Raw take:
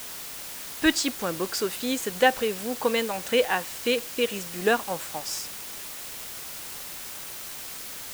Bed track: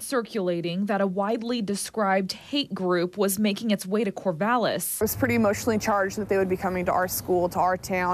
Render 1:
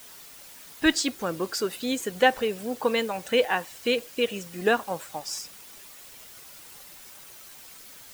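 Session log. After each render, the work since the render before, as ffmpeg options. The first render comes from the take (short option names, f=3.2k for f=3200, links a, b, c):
-af "afftdn=nr=10:nf=-38"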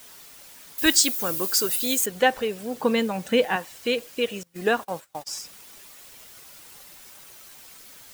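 -filter_complex "[0:a]asettb=1/sr,asplit=3[a][b][c];[a]atrim=end=0.784[d];[b]atrim=start=0.78:end=2.06,asetpts=PTS-STARTPTS,afade=t=in:d=0.004:c=qsin,afade=t=out:st=1.276:d=0.004:c=qsin,aemphasis=mode=production:type=75fm[e];[c]atrim=start=2.056[f];[d][e]acrossfade=d=0.004:c1=hsin:c2=qsin[g];[g][f]acrossfade=d=0.004:c1=qsin:c2=hsin,asettb=1/sr,asplit=3[h][i][j];[h]atrim=end=2.754[k];[i]atrim=start=2.75:end=3.56,asetpts=PTS-STARTPTS,afade=t=in:d=0.004:c=qsin,afade=t=out:st=0.806:d=0.004:c=qsin,equalizer=f=190:w=1.3:g=10[l];[j]atrim=start=3.556[m];[k][l]acrossfade=d=0.004:c1=hsin:c2=qsin[n];[n][m]acrossfade=d=0.004:c1=qsin:c2=hsin,asettb=1/sr,asplit=3[o][p][q];[o]atrim=end=4.434[r];[p]atrim=start=4.43:end=5.38,asetpts=PTS-STARTPTS,afade=t=in:d=0.004:c=qsin,afade=t=out:st=0.946:d=0.004:c=qsin,agate=range=-23dB:threshold=-40dB:ratio=16:release=100:detection=peak[s];[q]atrim=start=5.376[t];[r][s]acrossfade=d=0.004:c1=hsin:c2=qsin[u];[u][t]acrossfade=d=0.004:c1=qsin:c2=hsin"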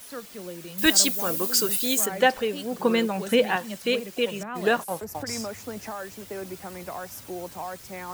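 -filter_complex "[1:a]volume=-12.5dB[a];[0:a][a]amix=inputs=2:normalize=0"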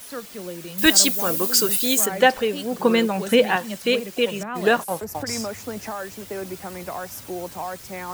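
-af "volume=4dB,alimiter=limit=-2dB:level=0:latency=1"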